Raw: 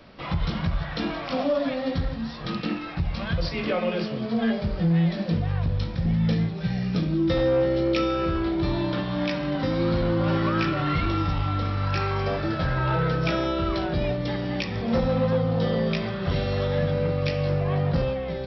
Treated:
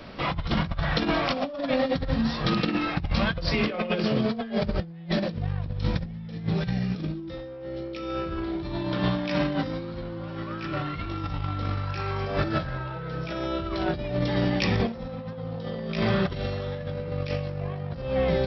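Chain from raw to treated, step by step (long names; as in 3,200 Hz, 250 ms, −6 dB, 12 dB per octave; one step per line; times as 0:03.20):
compressor whose output falls as the input rises −29 dBFS, ratio −0.5
level +2 dB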